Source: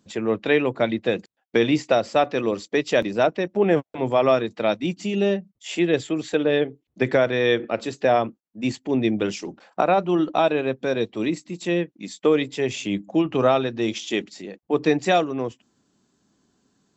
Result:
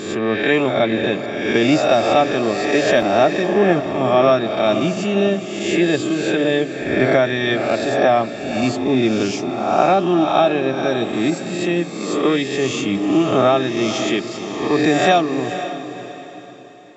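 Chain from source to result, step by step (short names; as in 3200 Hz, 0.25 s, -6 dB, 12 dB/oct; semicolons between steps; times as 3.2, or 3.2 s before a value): spectral swells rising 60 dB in 1.01 s; notch comb 490 Hz; diffused feedback echo 0.512 s, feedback 40%, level -10.5 dB; gain +3.5 dB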